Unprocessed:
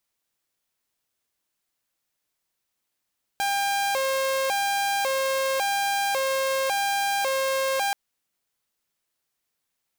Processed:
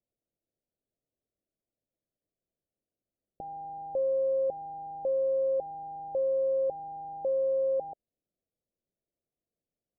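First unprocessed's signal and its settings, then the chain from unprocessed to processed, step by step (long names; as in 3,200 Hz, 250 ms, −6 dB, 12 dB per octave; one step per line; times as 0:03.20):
siren hi-lo 535–799 Hz 0.91 per second saw −20 dBFS 4.53 s
Butterworth low-pass 660 Hz 48 dB per octave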